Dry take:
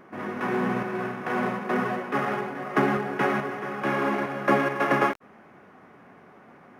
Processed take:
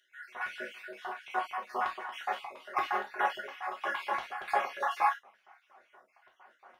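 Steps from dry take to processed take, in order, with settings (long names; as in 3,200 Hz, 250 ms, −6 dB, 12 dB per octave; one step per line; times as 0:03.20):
time-frequency cells dropped at random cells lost 49%
auto-filter high-pass square 4.3 Hz 810–3,200 Hz
reverb whose tail is shaped and stops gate 90 ms falling, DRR −2.5 dB
level −8.5 dB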